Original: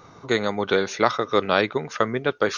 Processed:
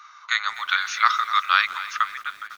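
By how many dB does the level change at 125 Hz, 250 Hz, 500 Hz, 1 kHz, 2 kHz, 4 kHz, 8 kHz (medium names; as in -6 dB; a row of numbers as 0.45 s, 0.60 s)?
under -35 dB, under -40 dB, under -30 dB, +3.5 dB, +4.5 dB, +3.5 dB, no reading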